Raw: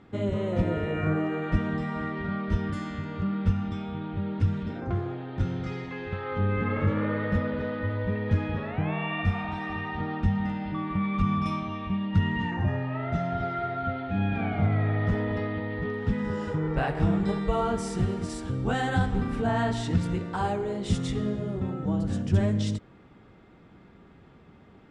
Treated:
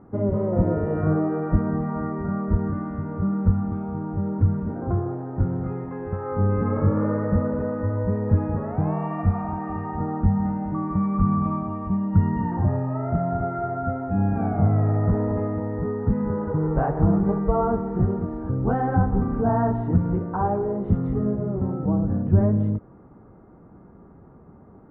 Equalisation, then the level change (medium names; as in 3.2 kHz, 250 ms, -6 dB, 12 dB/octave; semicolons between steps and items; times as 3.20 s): low-pass 1.2 kHz 24 dB/octave; +5.0 dB